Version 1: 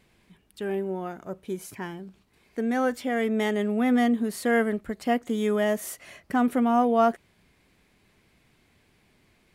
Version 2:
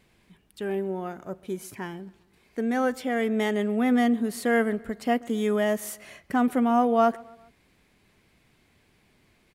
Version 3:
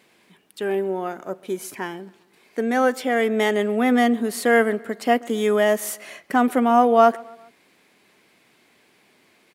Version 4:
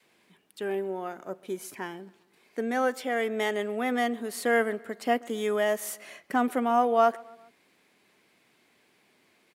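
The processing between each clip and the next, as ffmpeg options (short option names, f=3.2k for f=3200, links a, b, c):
-filter_complex "[0:a]asplit=2[a][b];[b]adelay=133,lowpass=f=4.4k:p=1,volume=-23dB,asplit=2[c][d];[d]adelay=133,lowpass=f=4.4k:p=1,volume=0.51,asplit=2[e][f];[f]adelay=133,lowpass=f=4.4k:p=1,volume=0.51[g];[a][c][e][g]amix=inputs=4:normalize=0"
-af "highpass=280,volume=7dB"
-af "adynamicequalizer=threshold=0.0224:dfrequency=230:dqfactor=1:tfrequency=230:tqfactor=1:attack=5:release=100:ratio=0.375:range=3:mode=cutabove:tftype=bell,volume=-6.5dB"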